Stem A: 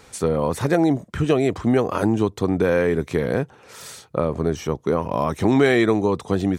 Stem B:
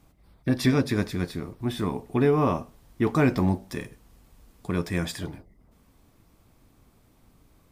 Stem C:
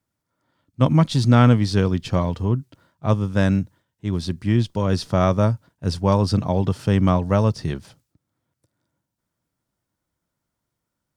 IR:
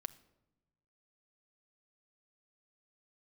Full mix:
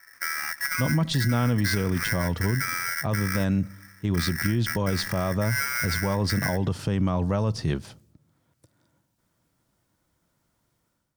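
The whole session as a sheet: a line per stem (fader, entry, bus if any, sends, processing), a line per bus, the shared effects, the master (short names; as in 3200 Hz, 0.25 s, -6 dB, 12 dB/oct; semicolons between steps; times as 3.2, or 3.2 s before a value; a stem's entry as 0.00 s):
-7.5 dB, 0.00 s, bus A, send -10 dB, median filter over 41 samples; tilt -3 dB/oct; polarity switched at an audio rate 1800 Hz
off
-5.0 dB, 0.00 s, no bus, send -9 dB, AGC gain up to 11 dB
bus A: 0.0 dB, bell 2900 Hz -13 dB 0.84 oct; compressor 3:1, threshold -32 dBFS, peak gain reduction 11 dB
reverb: on, pre-delay 6 ms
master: limiter -15.5 dBFS, peak gain reduction 11.5 dB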